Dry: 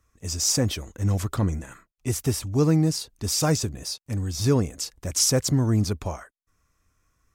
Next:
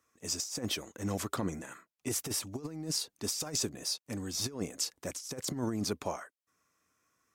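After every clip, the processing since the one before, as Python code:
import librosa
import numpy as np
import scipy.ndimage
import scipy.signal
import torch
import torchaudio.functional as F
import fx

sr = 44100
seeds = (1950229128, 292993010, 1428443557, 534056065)

y = scipy.signal.sosfilt(scipy.signal.butter(2, 230.0, 'highpass', fs=sr, output='sos'), x)
y = fx.over_compress(y, sr, threshold_db=-28.0, ratio=-0.5)
y = y * 10.0 ** (-5.5 / 20.0)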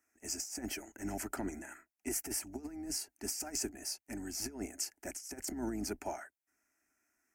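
y = fx.octave_divider(x, sr, octaves=2, level_db=-5.0)
y = fx.low_shelf(y, sr, hz=120.0, db=-9.5)
y = fx.fixed_phaser(y, sr, hz=740.0, stages=8)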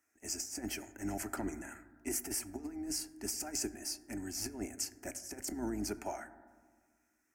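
y = fx.rev_fdn(x, sr, rt60_s=1.6, lf_ratio=1.3, hf_ratio=0.3, size_ms=58.0, drr_db=12.0)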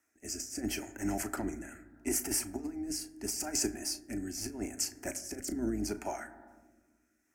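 y = fx.rotary(x, sr, hz=0.75)
y = fx.doubler(y, sr, ms=36.0, db=-13.5)
y = y * 10.0 ** (5.5 / 20.0)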